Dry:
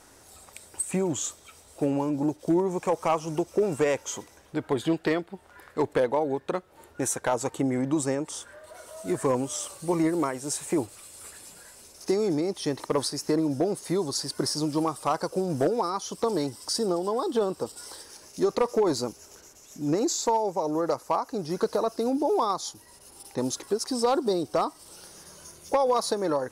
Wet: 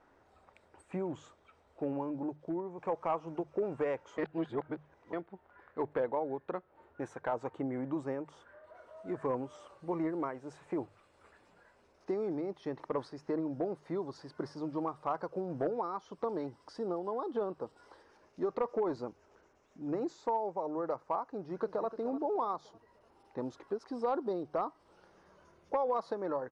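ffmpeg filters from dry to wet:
-filter_complex "[0:a]asplit=2[s0][s1];[s1]afade=t=in:st=21.34:d=0.01,afade=t=out:st=21.91:d=0.01,aecho=0:1:300|600|900|1200:0.211349|0.095107|0.0427982|0.0192592[s2];[s0][s2]amix=inputs=2:normalize=0,asplit=4[s3][s4][s5][s6];[s3]atrim=end=2.78,asetpts=PTS-STARTPTS,afade=t=out:st=2.14:d=0.64:silence=0.446684[s7];[s4]atrim=start=2.78:end=4.182,asetpts=PTS-STARTPTS,afade=t=in:d=0.004:c=hsin:silence=0.446684[s8];[s5]atrim=start=4.178:end=5.132,asetpts=PTS-STARTPTS,areverse[s9];[s6]atrim=start=5.128[s10];[s7][s8]concat=n=2:v=0:a=1[s11];[s11][s9]acrossfade=d=0.004:c1=hsin:c2=hsin[s12];[s12][s10]acrossfade=d=0.004:c1=hsin:c2=hsin,lowpass=1600,lowshelf=f=430:g=-5,bandreject=f=50:t=h:w=6,bandreject=f=100:t=h:w=6,bandreject=f=150:t=h:w=6,volume=0.473"

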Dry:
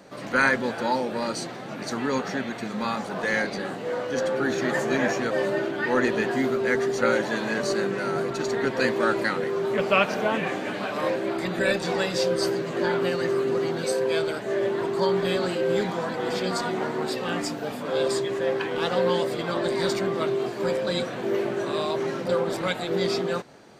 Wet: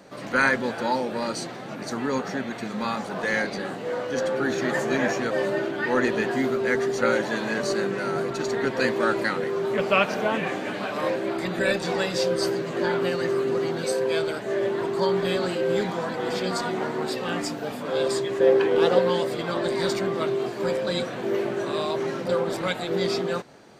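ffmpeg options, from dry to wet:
-filter_complex "[0:a]asettb=1/sr,asplit=3[s0][s1][s2];[s0]atrim=end=1.754[s3];[s1]atrim=start=1.75:end=2.51,asetpts=PTS-STARTPTS,afade=t=in:d=0.004:c=qsin,afade=t=out:st=0.756:d=0.004:c=qsin,equalizer=f=3100:t=o:w=1.8:g=-3[s4];[s2]atrim=start=2.506[s5];[s3][s4]acrossfade=d=0.004:c1=hsin:c2=qsin[s6];[s6][s5]acrossfade=d=0.004:c1=qsin:c2=hsin,asettb=1/sr,asplit=3[s7][s8][s9];[s7]atrim=end=18.404[s10];[s8]atrim=start=18.4:end=18.99,asetpts=PTS-STARTPTS,afade=t=in:d=0.004:c=qsin,afade=t=out:st=0.586:d=0.004:c=qsin,equalizer=f=420:t=o:w=1.1:g=9.5[s11];[s9]atrim=start=18.986[s12];[s10][s11]acrossfade=d=0.004:c1=hsin:c2=qsin[s13];[s13][s12]acrossfade=d=0.004:c1=qsin:c2=hsin"

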